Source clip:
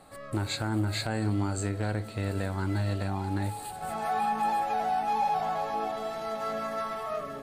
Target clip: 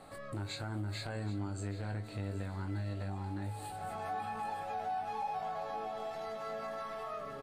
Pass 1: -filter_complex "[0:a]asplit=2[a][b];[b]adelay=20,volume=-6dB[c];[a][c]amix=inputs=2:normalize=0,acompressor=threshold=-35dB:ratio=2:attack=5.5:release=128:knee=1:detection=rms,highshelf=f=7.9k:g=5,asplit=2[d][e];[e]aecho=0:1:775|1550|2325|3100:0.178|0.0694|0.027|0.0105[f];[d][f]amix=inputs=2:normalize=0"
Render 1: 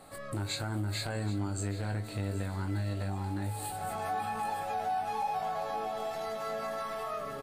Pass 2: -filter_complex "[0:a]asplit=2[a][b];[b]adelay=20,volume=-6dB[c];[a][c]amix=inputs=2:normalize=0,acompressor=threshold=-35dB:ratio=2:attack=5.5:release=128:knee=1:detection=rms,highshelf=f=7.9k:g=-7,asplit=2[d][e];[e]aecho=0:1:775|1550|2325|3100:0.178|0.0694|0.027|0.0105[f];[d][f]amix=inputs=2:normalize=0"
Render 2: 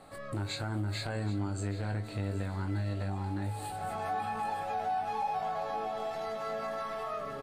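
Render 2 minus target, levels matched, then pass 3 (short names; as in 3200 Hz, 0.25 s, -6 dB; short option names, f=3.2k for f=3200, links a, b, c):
compressor: peak gain reduction -4.5 dB
-filter_complex "[0:a]asplit=2[a][b];[b]adelay=20,volume=-6dB[c];[a][c]amix=inputs=2:normalize=0,acompressor=threshold=-44dB:ratio=2:attack=5.5:release=128:knee=1:detection=rms,highshelf=f=7.9k:g=-7,asplit=2[d][e];[e]aecho=0:1:775|1550|2325|3100:0.178|0.0694|0.027|0.0105[f];[d][f]amix=inputs=2:normalize=0"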